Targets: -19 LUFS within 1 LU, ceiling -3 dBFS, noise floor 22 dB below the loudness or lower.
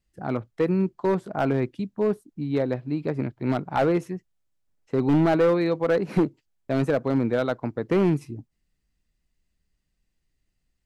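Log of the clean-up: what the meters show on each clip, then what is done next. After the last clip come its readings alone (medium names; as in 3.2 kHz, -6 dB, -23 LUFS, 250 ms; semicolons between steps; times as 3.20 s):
clipped samples 1.4%; clipping level -15.0 dBFS; loudness -25.0 LUFS; peak level -15.0 dBFS; loudness target -19.0 LUFS
-> clip repair -15 dBFS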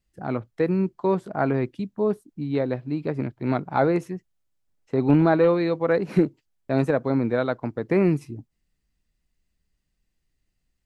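clipped samples 0.0%; loudness -24.0 LUFS; peak level -6.0 dBFS; loudness target -19.0 LUFS
-> trim +5 dB; peak limiter -3 dBFS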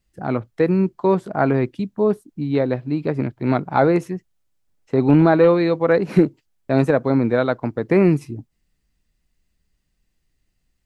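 loudness -19.0 LUFS; peak level -3.0 dBFS; noise floor -71 dBFS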